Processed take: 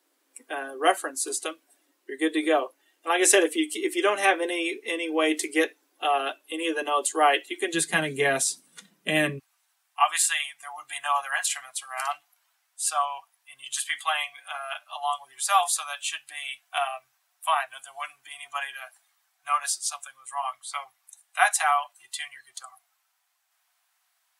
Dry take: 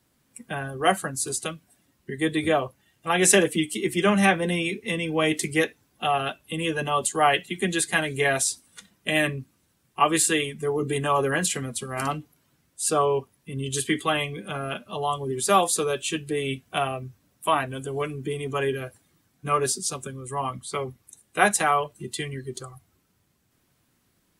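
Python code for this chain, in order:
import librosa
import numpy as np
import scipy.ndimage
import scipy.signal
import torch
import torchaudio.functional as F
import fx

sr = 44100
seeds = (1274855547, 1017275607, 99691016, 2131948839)

y = fx.ellip_highpass(x, sr, hz=fx.steps((0.0, 290.0), (7.73, 150.0), (9.38, 710.0)), order=4, stop_db=40)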